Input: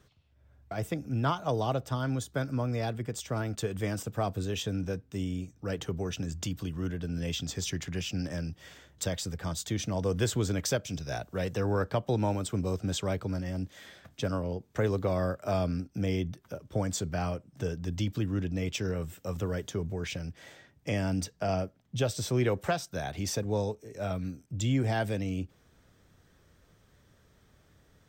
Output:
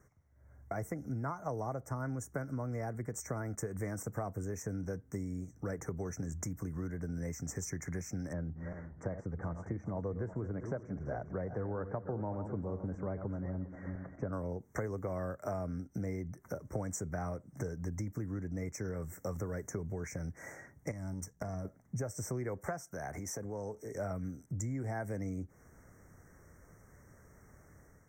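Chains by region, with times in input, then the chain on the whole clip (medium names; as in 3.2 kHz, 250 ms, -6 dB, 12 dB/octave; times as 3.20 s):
8.33–14.33 s: backward echo that repeats 201 ms, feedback 52%, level -11 dB + low-pass 1.3 kHz
20.91–21.65 s: tone controls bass +9 dB, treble +7 dB + compression 8:1, threshold -33 dBFS + power-law waveshaper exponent 1.4
22.81–23.95 s: compression, threshold -38 dBFS + bass shelf 160 Hz -5.5 dB
whole clip: compression 6:1, threshold -39 dBFS; Chebyshev band-stop 2.1–5.7 kHz, order 4; level rider gain up to 6 dB; trim -1.5 dB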